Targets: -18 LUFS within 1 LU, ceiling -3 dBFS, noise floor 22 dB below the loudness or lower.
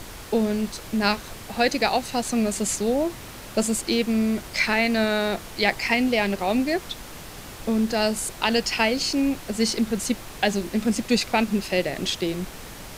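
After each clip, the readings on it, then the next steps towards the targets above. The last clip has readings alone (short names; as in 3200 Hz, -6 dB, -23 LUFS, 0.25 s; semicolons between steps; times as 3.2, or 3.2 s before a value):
noise floor -40 dBFS; noise floor target -46 dBFS; loudness -24.0 LUFS; peak -5.5 dBFS; loudness target -18.0 LUFS
-> noise print and reduce 6 dB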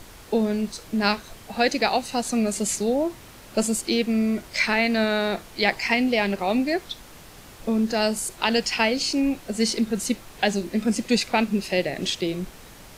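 noise floor -46 dBFS; loudness -24.0 LUFS; peak -5.5 dBFS; loudness target -18.0 LUFS
-> gain +6 dB; limiter -3 dBFS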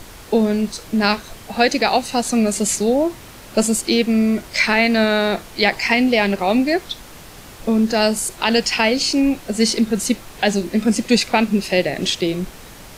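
loudness -18.0 LUFS; peak -3.0 dBFS; noise floor -40 dBFS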